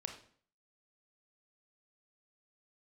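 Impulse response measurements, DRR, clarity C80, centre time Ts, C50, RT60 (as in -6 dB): 4.0 dB, 12.0 dB, 18 ms, 7.5 dB, 0.50 s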